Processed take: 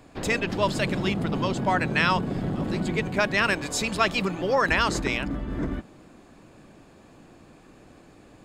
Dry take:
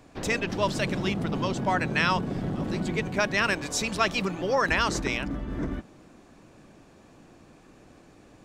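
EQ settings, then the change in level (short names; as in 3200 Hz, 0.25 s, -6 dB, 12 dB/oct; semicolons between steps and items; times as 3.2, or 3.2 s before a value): notch 5800 Hz, Q 7.5; +2.0 dB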